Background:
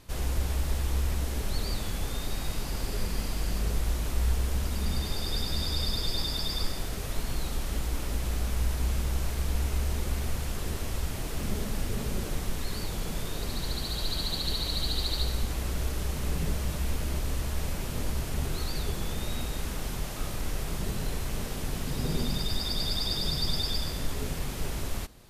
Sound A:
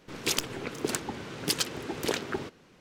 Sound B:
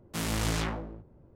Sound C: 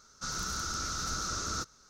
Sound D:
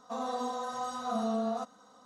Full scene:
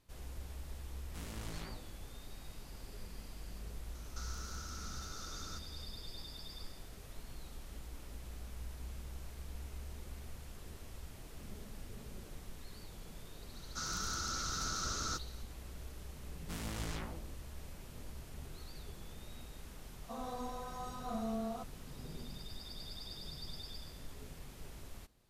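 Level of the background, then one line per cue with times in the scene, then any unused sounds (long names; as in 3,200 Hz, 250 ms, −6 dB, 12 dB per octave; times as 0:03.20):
background −17.5 dB
0:01.00: mix in B −17 dB
0:03.95: mix in C −3.5 dB + downward compressor, threshold −42 dBFS
0:13.54: mix in C −4 dB
0:16.35: mix in B −12 dB
0:19.99: mix in D −10 dB + low-shelf EQ 260 Hz +7 dB
not used: A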